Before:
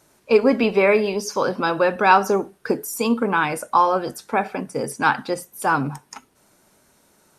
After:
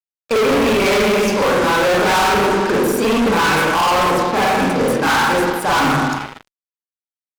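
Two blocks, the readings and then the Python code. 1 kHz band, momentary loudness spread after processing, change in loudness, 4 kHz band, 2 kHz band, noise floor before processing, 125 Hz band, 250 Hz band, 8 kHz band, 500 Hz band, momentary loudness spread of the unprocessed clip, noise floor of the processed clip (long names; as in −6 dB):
+4.5 dB, 3 LU, +5.0 dB, +12.5 dB, +6.5 dB, −60 dBFS, +8.0 dB, +6.0 dB, +7.5 dB, +4.5 dB, 10 LU, below −85 dBFS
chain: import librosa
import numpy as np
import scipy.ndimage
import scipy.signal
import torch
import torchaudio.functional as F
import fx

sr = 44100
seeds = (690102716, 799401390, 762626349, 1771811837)

y = fx.rev_spring(x, sr, rt60_s=1.2, pass_ms=(39, 46, 50), chirp_ms=80, drr_db=-10.0)
y = fx.fuzz(y, sr, gain_db=19.0, gate_db=-29.0)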